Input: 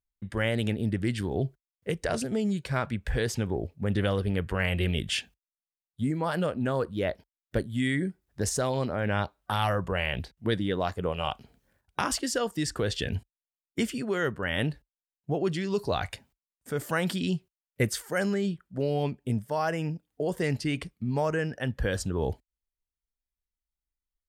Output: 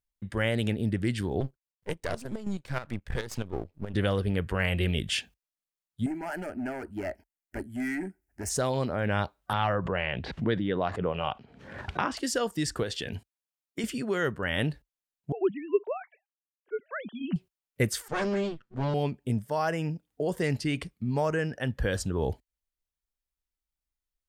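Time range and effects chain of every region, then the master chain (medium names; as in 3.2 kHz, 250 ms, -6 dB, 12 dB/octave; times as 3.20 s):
1.40–3.94 s: partial rectifier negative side -12 dB + square tremolo 4.7 Hz, depth 65%
6.06–8.50 s: overload inside the chain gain 26 dB + static phaser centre 740 Hz, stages 8
9.53–12.17 s: band-pass 100–2900 Hz + swell ahead of each attack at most 62 dB/s
12.83–13.84 s: high-pass 190 Hz 6 dB/octave + compression 2.5:1, threshold -30 dBFS
15.32–17.36 s: formants replaced by sine waves + upward expansion, over -41 dBFS
18.08–18.94 s: comb filter that takes the minimum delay 8.2 ms + Bessel low-pass 5.2 kHz, order 4
whole clip: none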